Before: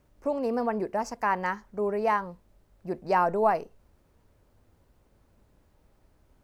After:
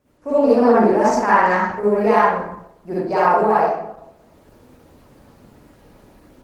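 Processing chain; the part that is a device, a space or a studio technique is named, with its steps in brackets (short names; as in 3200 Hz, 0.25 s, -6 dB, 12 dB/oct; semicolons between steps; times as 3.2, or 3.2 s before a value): far-field microphone of a smart speaker (reverb RT60 0.80 s, pre-delay 44 ms, DRR -9.5 dB; HPF 150 Hz 6 dB/oct; AGC gain up to 9.5 dB; Opus 16 kbps 48000 Hz)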